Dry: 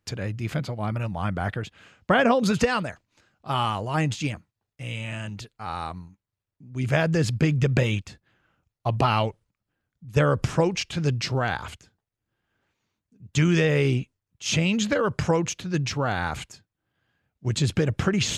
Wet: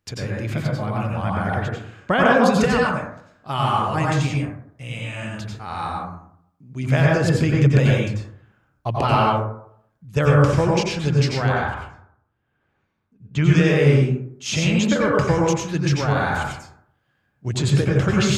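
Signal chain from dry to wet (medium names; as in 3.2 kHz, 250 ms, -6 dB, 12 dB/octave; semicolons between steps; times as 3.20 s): 11.52–13.46 s: tone controls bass +1 dB, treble -14 dB; plate-style reverb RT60 0.67 s, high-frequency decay 0.35×, pre-delay 80 ms, DRR -3 dB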